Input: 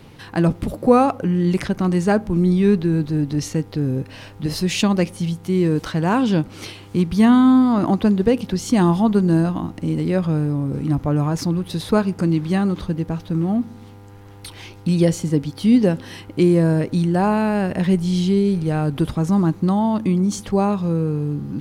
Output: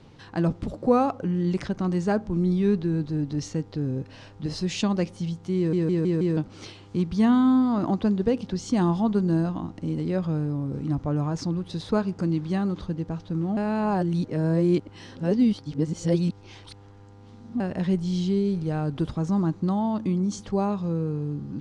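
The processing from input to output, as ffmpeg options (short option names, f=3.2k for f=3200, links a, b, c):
-filter_complex "[0:a]asplit=8[a][b][c][d][e][f][g][h];[a]atrim=end=5.732[i];[b]atrim=start=5.568:end=5.732[j];[c]atrim=start=5.568:end=5.732[k];[d]atrim=start=5.568:end=5.732[l];[e]atrim=start=5.568:end=5.732[m];[f]atrim=start=6.368:end=13.572[n];[g]atrim=start=13.568:end=17.602,asetpts=PTS-STARTPTS,areverse[o];[h]atrim=start=17.598[p];[i][j]acrossfade=d=0.004:c1=hsin:c2=hsin[q];[q][k]acrossfade=d=0.004:c1=hsin:c2=hsin[r];[r][l]acrossfade=d=0.004:c1=hsin:c2=hsin[s];[s][m]acrossfade=d=0.004:c1=hsin:c2=hsin[t];[t][n]acrossfade=d=0.004:c1=hsin:c2=hsin[u];[u][o]acrossfade=d=0.004:c1=hsin:c2=hsin[v];[v][p]acrossfade=d=0.004:c1=hsin:c2=hsin,lowpass=f=7.3k:w=0.5412,lowpass=f=7.3k:w=1.3066,equalizer=f=2.3k:t=o:w=1:g=-4,volume=-6.5dB"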